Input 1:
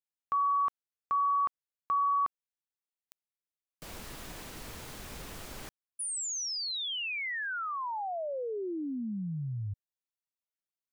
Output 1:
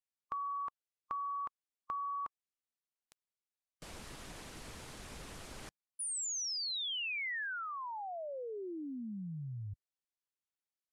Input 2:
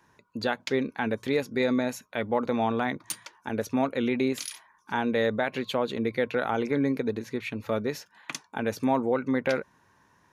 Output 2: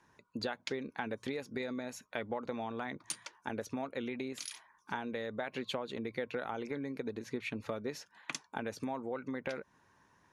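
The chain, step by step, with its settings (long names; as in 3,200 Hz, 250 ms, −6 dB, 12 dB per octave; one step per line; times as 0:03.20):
low-pass filter 11,000 Hz 24 dB per octave
downward compressor 4 to 1, threshold −31 dBFS
harmonic and percussive parts rebalanced harmonic −4 dB
level −2.5 dB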